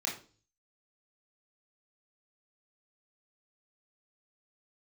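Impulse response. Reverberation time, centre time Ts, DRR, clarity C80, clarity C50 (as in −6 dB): 0.40 s, 28 ms, −3.5 dB, 13.5 dB, 8.0 dB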